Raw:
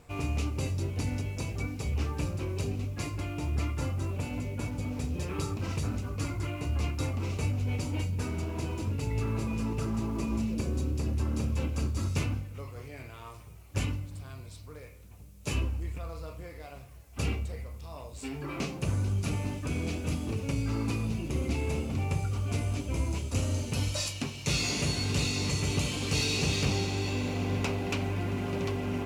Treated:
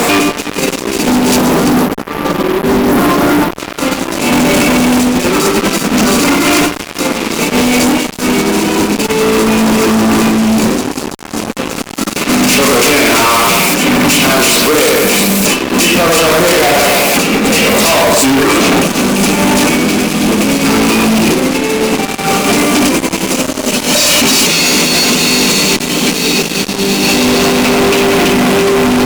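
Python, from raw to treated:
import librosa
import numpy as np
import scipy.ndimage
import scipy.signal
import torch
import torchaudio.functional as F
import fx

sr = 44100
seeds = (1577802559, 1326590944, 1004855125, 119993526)

y = fx.spec_erase(x, sr, start_s=1.03, length_s=2.48, low_hz=1500.0, high_hz=11000.0)
y = fx.low_shelf(y, sr, hz=340.0, db=7.5, at=(25.76, 27.03))
y = fx.echo_split(y, sr, split_hz=2300.0, low_ms=96, high_ms=332, feedback_pct=52, wet_db=-4.0)
y = fx.over_compress(y, sr, threshold_db=-41.0, ratio=-1.0)
y = fx.brickwall_highpass(y, sr, low_hz=170.0)
y = fx.fuzz(y, sr, gain_db=57.0, gate_db=-56.0)
y = y * 10.0 ** (5.5 / 20.0)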